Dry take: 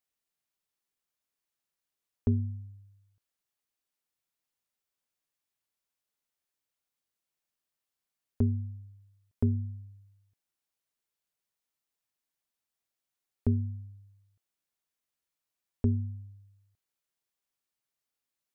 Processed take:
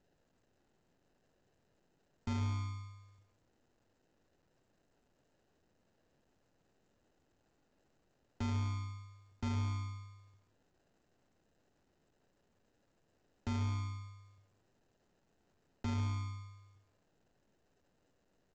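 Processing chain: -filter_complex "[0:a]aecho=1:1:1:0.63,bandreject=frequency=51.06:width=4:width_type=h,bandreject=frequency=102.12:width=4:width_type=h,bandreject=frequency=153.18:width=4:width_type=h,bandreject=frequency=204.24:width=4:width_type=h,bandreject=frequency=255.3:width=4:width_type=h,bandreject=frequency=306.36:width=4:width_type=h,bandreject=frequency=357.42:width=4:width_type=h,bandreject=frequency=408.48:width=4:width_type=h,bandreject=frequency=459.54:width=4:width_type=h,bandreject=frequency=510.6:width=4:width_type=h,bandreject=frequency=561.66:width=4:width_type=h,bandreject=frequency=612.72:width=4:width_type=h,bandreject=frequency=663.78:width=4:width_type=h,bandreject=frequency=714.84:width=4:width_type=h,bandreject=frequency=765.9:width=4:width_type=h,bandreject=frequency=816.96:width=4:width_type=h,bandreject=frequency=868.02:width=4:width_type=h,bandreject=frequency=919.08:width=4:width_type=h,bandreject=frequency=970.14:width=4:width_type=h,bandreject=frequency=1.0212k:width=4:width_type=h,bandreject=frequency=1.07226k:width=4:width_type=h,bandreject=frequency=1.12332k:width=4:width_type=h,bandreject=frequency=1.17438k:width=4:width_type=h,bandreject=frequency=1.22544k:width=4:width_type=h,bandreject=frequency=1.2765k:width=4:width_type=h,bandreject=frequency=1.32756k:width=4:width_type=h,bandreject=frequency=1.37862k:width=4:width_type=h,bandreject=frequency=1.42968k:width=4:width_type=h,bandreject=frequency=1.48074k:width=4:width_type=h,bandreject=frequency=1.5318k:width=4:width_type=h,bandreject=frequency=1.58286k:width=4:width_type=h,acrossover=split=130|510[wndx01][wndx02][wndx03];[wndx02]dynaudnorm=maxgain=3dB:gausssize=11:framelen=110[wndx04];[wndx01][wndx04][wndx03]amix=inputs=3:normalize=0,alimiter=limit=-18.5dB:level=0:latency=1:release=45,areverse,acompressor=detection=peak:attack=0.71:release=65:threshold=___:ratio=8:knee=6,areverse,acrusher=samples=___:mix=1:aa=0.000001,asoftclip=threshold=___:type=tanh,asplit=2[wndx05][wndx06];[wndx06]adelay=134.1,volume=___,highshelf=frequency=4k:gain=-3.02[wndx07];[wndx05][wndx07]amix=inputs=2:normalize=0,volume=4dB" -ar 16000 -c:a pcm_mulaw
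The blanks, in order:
-34dB, 39, -33dB, -11dB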